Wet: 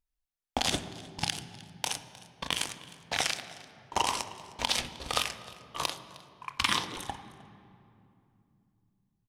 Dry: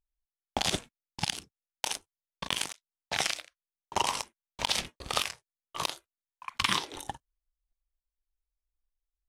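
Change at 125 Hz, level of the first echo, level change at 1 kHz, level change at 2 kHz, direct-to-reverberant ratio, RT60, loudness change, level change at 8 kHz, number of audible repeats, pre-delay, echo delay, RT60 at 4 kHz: +1.0 dB, −21.0 dB, +0.5 dB, +0.5 dB, 8.5 dB, 2.6 s, 0.0 dB, 0.0 dB, 1, 3 ms, 309 ms, 1.4 s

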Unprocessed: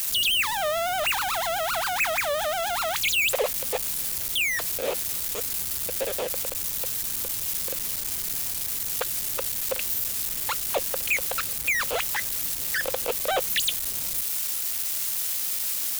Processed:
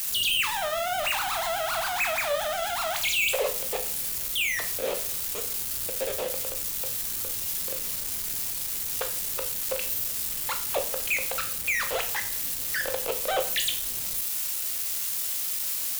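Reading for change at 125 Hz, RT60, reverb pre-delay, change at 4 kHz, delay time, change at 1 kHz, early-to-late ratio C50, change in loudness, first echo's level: −2.0 dB, 0.50 s, 12 ms, −2.0 dB, no echo audible, −2.0 dB, 10.5 dB, −1.5 dB, no echo audible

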